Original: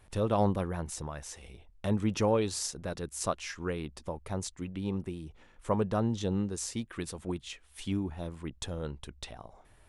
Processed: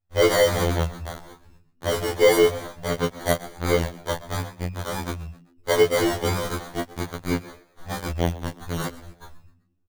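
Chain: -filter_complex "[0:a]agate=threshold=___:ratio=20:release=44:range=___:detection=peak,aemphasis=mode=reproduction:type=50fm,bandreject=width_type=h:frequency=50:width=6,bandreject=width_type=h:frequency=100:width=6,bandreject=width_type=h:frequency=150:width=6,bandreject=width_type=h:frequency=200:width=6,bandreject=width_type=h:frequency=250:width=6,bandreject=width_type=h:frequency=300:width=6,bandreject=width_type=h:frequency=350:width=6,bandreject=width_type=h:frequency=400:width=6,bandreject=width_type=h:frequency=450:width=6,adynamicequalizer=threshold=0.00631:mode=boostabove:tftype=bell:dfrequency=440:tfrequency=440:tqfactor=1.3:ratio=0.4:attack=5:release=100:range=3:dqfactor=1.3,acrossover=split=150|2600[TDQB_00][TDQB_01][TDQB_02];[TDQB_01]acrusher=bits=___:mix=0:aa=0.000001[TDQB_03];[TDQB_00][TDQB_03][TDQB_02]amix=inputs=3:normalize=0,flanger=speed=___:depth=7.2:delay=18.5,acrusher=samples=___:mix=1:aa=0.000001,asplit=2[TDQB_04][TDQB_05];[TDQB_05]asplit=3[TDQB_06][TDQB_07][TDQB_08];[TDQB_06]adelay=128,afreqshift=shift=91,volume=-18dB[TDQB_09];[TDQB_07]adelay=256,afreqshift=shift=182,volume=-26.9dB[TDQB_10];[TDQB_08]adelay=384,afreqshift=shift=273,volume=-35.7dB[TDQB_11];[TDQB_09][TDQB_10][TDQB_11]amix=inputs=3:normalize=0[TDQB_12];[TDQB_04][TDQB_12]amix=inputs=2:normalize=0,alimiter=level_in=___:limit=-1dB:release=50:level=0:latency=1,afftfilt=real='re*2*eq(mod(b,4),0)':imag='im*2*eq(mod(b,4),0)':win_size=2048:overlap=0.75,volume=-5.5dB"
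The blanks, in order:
-52dB, -21dB, 4, 0.69, 17, 17dB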